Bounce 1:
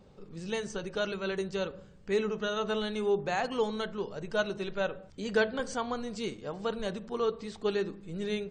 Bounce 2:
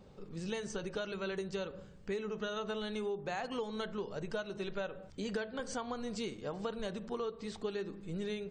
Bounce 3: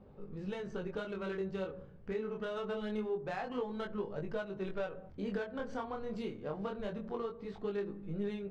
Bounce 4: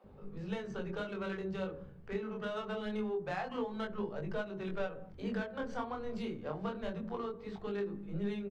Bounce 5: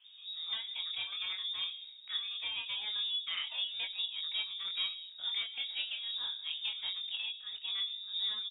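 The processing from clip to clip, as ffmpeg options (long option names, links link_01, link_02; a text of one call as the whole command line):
ffmpeg -i in.wav -af "acompressor=threshold=-34dB:ratio=12" out.wav
ffmpeg -i in.wav -af "adynamicsmooth=sensitivity=3.5:basefreq=1800,flanger=delay=19.5:depth=7.7:speed=0.25,volume=3.5dB" out.wav
ffmpeg -i in.wav -filter_complex "[0:a]acrossover=split=410[link_01][link_02];[link_01]adelay=40[link_03];[link_03][link_02]amix=inputs=2:normalize=0,volume=2dB" out.wav
ffmpeg -i in.wav -af "lowpass=frequency=3200:width_type=q:width=0.5098,lowpass=frequency=3200:width_type=q:width=0.6013,lowpass=frequency=3200:width_type=q:width=0.9,lowpass=frequency=3200:width_type=q:width=2.563,afreqshift=-3800" out.wav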